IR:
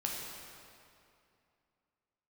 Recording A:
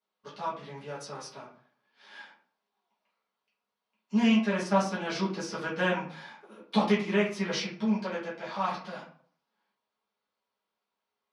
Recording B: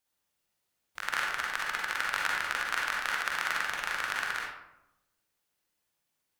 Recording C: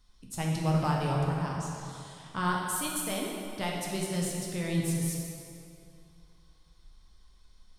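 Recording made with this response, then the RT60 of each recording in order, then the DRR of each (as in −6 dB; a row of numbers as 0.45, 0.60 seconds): C; 0.50, 0.90, 2.6 seconds; −9.5, −3.0, −2.5 decibels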